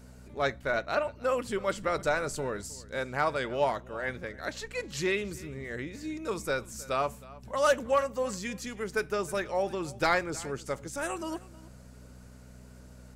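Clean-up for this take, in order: clip repair -16 dBFS; de-hum 62.2 Hz, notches 4; inverse comb 0.315 s -20.5 dB

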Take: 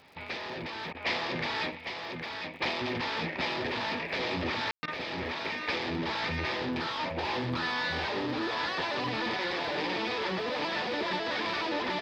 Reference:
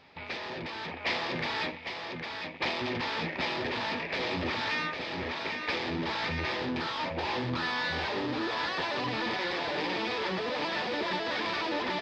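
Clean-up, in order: de-click; room tone fill 4.71–4.83; interpolate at 0.93/4.86, 16 ms

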